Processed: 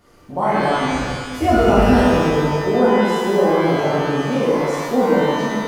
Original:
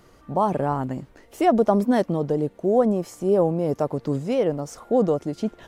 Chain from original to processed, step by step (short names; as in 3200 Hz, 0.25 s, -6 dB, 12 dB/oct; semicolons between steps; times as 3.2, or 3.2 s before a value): 0.88–2.09 octaver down 2 oct, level -1 dB; shimmer reverb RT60 1.6 s, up +12 st, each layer -8 dB, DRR -9.5 dB; gain -5 dB